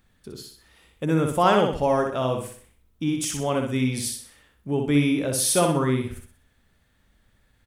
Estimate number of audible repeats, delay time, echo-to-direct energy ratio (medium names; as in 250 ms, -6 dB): 4, 62 ms, -4.0 dB